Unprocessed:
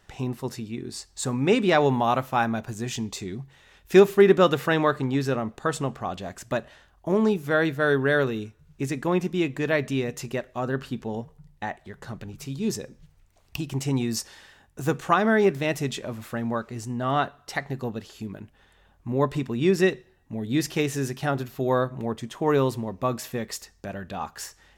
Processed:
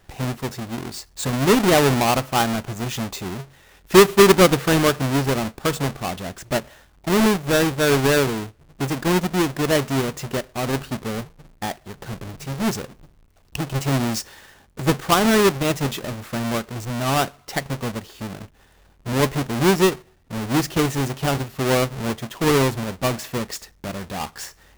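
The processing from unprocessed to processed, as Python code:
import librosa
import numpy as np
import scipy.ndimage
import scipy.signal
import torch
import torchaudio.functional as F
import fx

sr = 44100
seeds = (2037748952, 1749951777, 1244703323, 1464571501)

y = fx.halfwave_hold(x, sr)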